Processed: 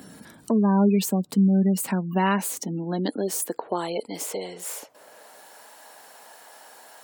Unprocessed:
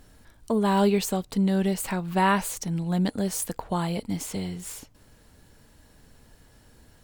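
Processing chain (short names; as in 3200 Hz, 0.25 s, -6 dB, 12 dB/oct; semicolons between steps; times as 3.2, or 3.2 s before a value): high-pass sweep 190 Hz -> 750 Hz, 1.73–5.6; spectral gate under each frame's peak -30 dB strong; high shelf 6500 Hz +8.5 dB; three-band squash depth 40%; gain -1.5 dB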